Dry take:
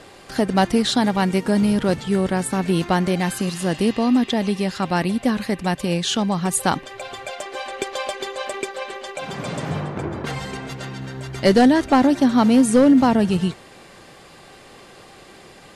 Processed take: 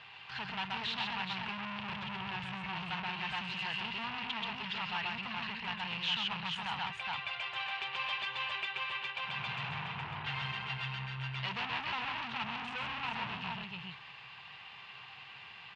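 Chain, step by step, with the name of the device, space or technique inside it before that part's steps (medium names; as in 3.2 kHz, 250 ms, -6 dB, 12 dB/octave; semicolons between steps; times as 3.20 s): 1.41–3.03 s: bass shelf 200 Hz +8.5 dB; multi-tap echo 131/417 ms -3.5/-7 dB; scooped metal amplifier (valve stage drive 26 dB, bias 0.55; cabinet simulation 110–3500 Hz, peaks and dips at 130 Hz +10 dB, 230 Hz +4 dB, 560 Hz -10 dB, 940 Hz +9 dB, 2.7 kHz +9 dB; amplifier tone stack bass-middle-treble 10-0-10)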